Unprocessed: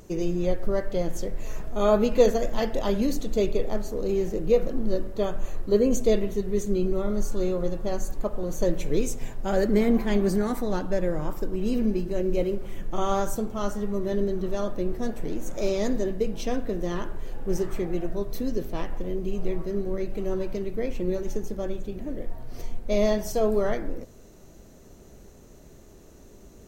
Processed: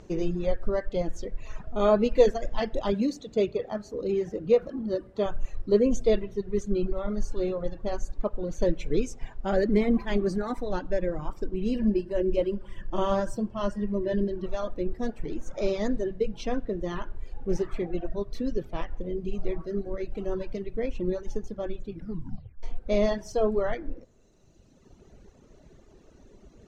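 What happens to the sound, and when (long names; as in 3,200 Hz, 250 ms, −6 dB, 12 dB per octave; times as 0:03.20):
0:02.92–0:05.26: high-pass filter 77 Hz
0:11.74–0:14.46: EQ curve with evenly spaced ripples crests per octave 1.3, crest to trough 8 dB
0:21.90: tape stop 0.73 s
whole clip: low-pass filter 4,700 Hz 12 dB per octave; reverb reduction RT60 2 s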